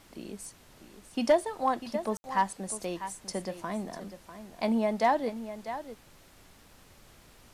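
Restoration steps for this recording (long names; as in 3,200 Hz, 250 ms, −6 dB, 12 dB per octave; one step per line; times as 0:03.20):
clipped peaks rebuilt −15.5 dBFS
ambience match 0:02.17–0:02.24
noise reduction from a noise print 19 dB
echo removal 647 ms −12 dB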